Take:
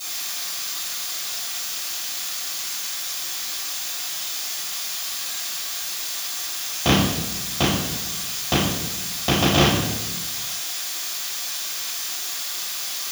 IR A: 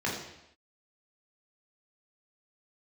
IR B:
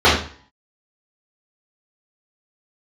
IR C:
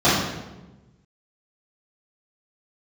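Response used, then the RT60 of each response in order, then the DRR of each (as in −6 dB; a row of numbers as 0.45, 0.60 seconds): C; non-exponential decay, 0.45 s, 1.1 s; −4.5, −11.0, −12.0 decibels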